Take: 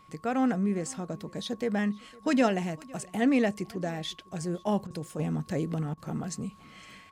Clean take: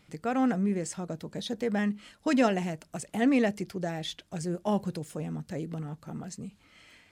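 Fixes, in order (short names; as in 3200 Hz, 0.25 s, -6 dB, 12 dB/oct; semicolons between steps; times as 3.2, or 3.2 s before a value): notch 1100 Hz, Q 30; interpolate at 4.87/5.94, 33 ms; inverse comb 0.508 s -23.5 dB; gain correction -5 dB, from 5.19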